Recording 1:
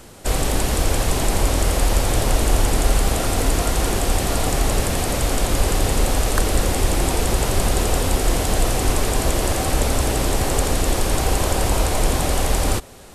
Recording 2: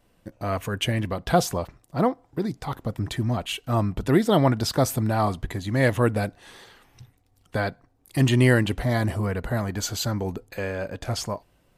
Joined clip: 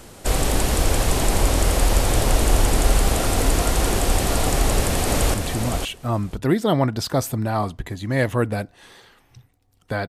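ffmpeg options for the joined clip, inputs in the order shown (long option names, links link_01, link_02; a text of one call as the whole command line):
ffmpeg -i cue0.wav -i cue1.wav -filter_complex "[0:a]apad=whole_dur=10.08,atrim=end=10.08,atrim=end=5.342[link_01];[1:a]atrim=start=2.978:end=7.72[link_02];[link_01][link_02]acrossfade=duration=0.004:curve1=hsin:curve2=hsin,asplit=2[link_03][link_04];[link_04]afade=type=in:start_time=4.55:duration=0.01,afade=type=out:start_time=5.34:duration=0.01,aecho=0:1:510|1020:0.530884|0.0530884[link_05];[link_03][link_05]amix=inputs=2:normalize=0" out.wav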